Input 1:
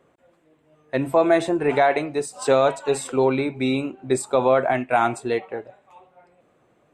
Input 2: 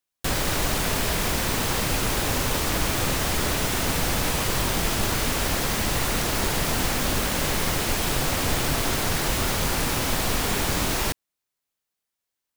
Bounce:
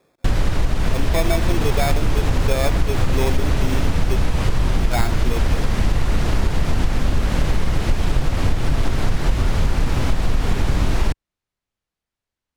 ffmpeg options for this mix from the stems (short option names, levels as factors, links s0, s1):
-filter_complex "[0:a]acrusher=samples=15:mix=1:aa=0.000001,volume=0.841,asplit=3[s0][s1][s2];[s0]atrim=end=4.17,asetpts=PTS-STARTPTS,afade=t=out:st=4.166:d=0.004:c=hsin[s3];[s1]atrim=start=4.17:end=4.79,asetpts=PTS-STARTPTS,volume=0[s4];[s2]atrim=start=4.79,asetpts=PTS-STARTPTS,afade=t=in:d=0.004:c=hsin[s5];[s3][s4][s5]concat=n=3:v=0:a=1[s6];[1:a]aemphasis=mode=reproduction:type=bsi,volume=1.26[s7];[s6][s7]amix=inputs=2:normalize=0,acompressor=threshold=0.251:ratio=6"